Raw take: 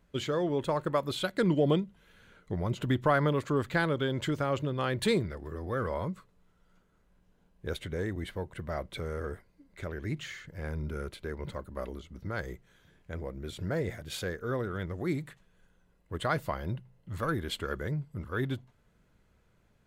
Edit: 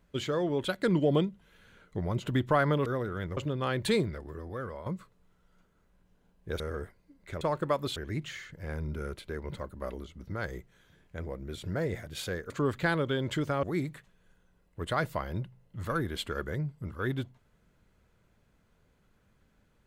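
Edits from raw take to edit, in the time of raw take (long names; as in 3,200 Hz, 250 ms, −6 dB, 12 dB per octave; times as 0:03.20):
0:00.65–0:01.20: move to 0:09.91
0:03.41–0:04.54: swap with 0:14.45–0:14.96
0:05.29–0:06.03: fade out, to −11 dB
0:07.77–0:09.10: remove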